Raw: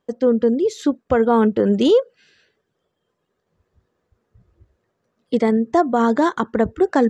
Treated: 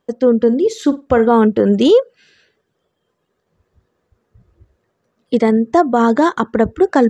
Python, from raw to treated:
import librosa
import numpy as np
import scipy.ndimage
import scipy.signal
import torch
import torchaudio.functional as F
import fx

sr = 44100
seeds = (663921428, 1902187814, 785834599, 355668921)

y = fx.room_flutter(x, sr, wall_m=8.5, rt60_s=0.22, at=(0.46, 1.31), fade=0.02)
y = F.gain(torch.from_numpy(y), 4.0).numpy()